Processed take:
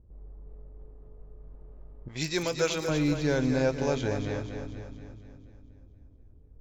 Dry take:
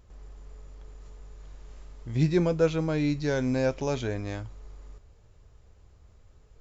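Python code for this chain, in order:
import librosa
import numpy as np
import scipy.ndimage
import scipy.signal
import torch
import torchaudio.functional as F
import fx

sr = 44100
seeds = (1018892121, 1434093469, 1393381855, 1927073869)

y = fx.dmg_crackle(x, sr, seeds[0], per_s=68.0, level_db=-46.0)
y = fx.env_lowpass(y, sr, base_hz=340.0, full_db=-24.5)
y = fx.tilt_eq(y, sr, slope=4.5, at=(2.08, 2.89))
y = fx.echo_split(y, sr, split_hz=310.0, low_ms=363, high_ms=239, feedback_pct=52, wet_db=-7.5)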